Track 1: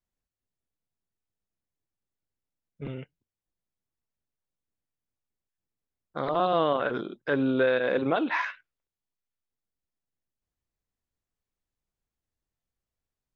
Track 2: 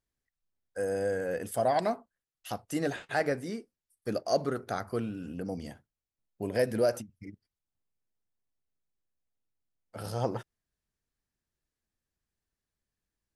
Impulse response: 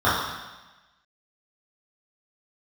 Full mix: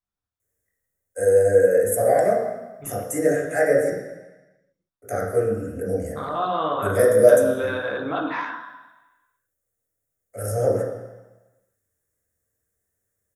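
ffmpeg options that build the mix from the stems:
-filter_complex "[0:a]volume=0.562,asplit=2[s0][s1];[s1]volume=0.119[s2];[1:a]firequalizer=gain_entry='entry(250,0);entry(530,14);entry(920,-17);entry(2000,8);entry(3600,-26);entry(6600,10)':delay=0.05:min_phase=1,highshelf=f=3700:g=11.5,adelay=400,volume=0.398,asplit=3[s3][s4][s5];[s3]atrim=end=3.9,asetpts=PTS-STARTPTS,afade=t=out:st=3.896:d=0.004:c=hsin[s6];[s4]atrim=start=3.9:end=5.02,asetpts=PTS-STARTPTS,volume=0[s7];[s5]atrim=start=5.02,asetpts=PTS-STARTPTS,afade=t=in:d=0.004:c=hsin[s8];[s6][s7][s8]concat=n=3:v=0:a=1,asplit=2[s9][s10];[s10]volume=0.398[s11];[2:a]atrim=start_sample=2205[s12];[s2][s11]amix=inputs=2:normalize=0[s13];[s13][s12]afir=irnorm=-1:irlink=0[s14];[s0][s9][s14]amix=inputs=3:normalize=0"

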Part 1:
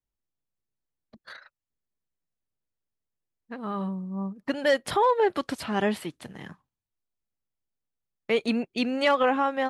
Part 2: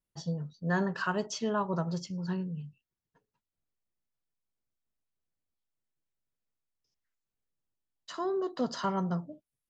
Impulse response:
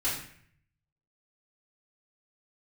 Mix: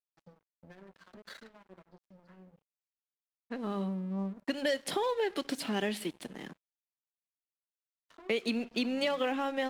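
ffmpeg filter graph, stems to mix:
-filter_complex "[0:a]volume=1.19,asplit=2[s0][s1];[s1]volume=0.0708[s2];[1:a]lowpass=2200,acompressor=threshold=0.0112:ratio=12,flanger=delay=9.3:depth=1.8:regen=-25:speed=0.9:shape=sinusoidal,volume=0.708,asplit=2[s3][s4];[s4]volume=0.15[s5];[2:a]atrim=start_sample=2205[s6];[s2][s5]amix=inputs=2:normalize=0[s7];[s7][s6]afir=irnorm=-1:irlink=0[s8];[s0][s3][s8]amix=inputs=3:normalize=0,highpass=f=180:w=0.5412,highpass=f=180:w=1.3066,acrossover=split=770|1900[s9][s10][s11];[s9]acompressor=threshold=0.0316:ratio=4[s12];[s10]acompressor=threshold=0.00126:ratio=4[s13];[s11]acompressor=threshold=0.02:ratio=4[s14];[s12][s13][s14]amix=inputs=3:normalize=0,aeval=exprs='sgn(val(0))*max(abs(val(0))-0.00251,0)':c=same"

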